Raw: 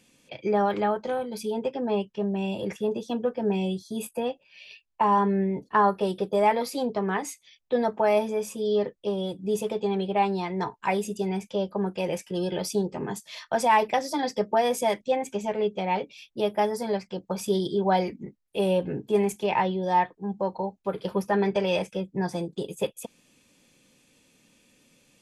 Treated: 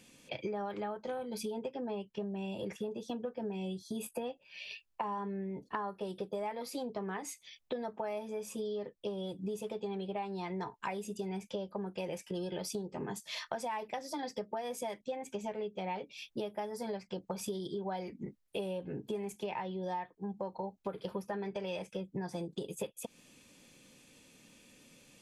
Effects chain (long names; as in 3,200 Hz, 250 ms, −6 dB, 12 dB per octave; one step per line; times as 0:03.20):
downward compressor 10 to 1, threshold −37 dBFS, peak gain reduction 20 dB
level +1.5 dB